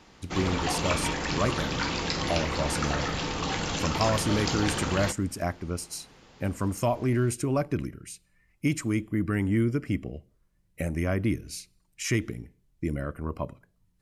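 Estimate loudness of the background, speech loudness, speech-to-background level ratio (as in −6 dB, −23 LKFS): −29.5 LKFS, −30.0 LKFS, −0.5 dB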